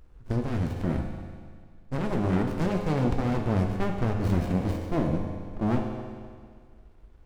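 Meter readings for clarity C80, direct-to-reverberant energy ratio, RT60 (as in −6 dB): 5.5 dB, 2.0 dB, 1.9 s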